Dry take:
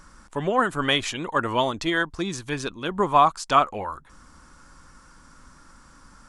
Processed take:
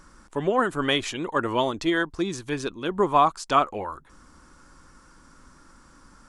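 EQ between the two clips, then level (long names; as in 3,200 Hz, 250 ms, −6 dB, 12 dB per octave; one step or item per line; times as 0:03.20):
parametric band 360 Hz +5.5 dB 0.96 octaves
−2.5 dB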